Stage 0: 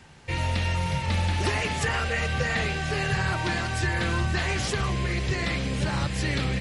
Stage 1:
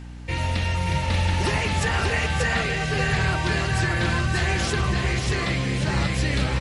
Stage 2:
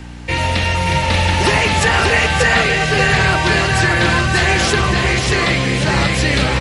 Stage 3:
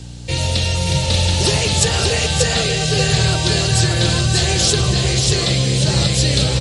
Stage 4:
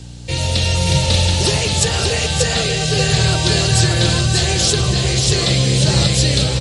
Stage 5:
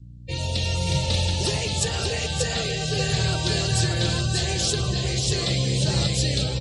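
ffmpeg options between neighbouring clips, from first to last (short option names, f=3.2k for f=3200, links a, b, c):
-af "aeval=exprs='val(0)+0.0126*(sin(2*PI*60*n/s)+sin(2*PI*2*60*n/s)/2+sin(2*PI*3*60*n/s)/3+sin(2*PI*4*60*n/s)/4+sin(2*PI*5*60*n/s)/5)':c=same,aecho=1:1:585:0.668,volume=1.5dB"
-filter_complex "[0:a]equalizer=f=680:w=0.34:g=7,acrossover=split=220|1100|1900[a][b][c][d];[d]acontrast=38[e];[a][b][c][e]amix=inputs=4:normalize=0,volume=4dB"
-af "equalizer=f=125:t=o:w=1:g=8,equalizer=f=250:t=o:w=1:g=-4,equalizer=f=500:t=o:w=1:g=4,equalizer=f=1k:t=o:w=1:g=-7,equalizer=f=2k:t=o:w=1:g=-10,equalizer=f=4k:t=o:w=1:g=8,equalizer=f=8k:t=o:w=1:g=10,volume=-3.5dB"
-af "dynaudnorm=f=240:g=5:m=11.5dB,volume=-1dB"
-af "afftdn=nr=30:nf=-30,volume=-8dB"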